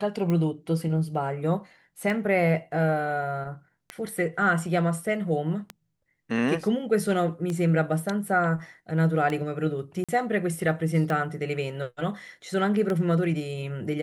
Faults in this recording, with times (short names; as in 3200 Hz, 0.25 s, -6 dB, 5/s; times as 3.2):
tick 33 1/3 rpm -17 dBFS
10.04–10.09 gap 46 ms